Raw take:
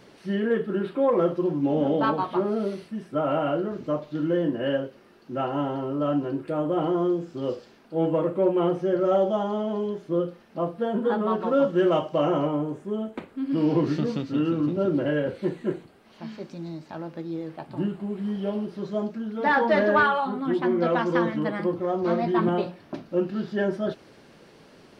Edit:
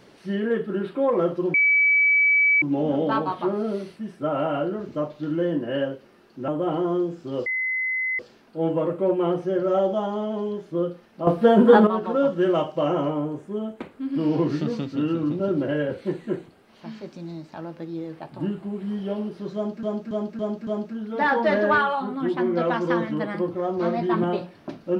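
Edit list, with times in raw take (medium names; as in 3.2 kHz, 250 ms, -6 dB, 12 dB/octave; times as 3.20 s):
1.54 s: add tone 2.29 kHz -15 dBFS 1.08 s
5.40–6.58 s: delete
7.56 s: add tone 2.04 kHz -22.5 dBFS 0.73 s
10.64–11.24 s: gain +11 dB
18.92–19.20 s: loop, 5 plays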